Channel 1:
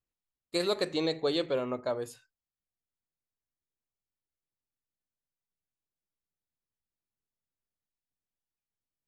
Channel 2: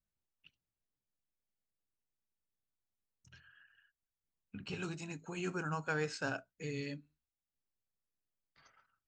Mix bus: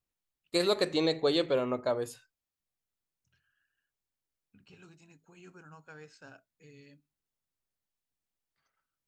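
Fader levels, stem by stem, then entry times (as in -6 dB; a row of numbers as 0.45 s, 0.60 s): +2.0 dB, -14.5 dB; 0.00 s, 0.00 s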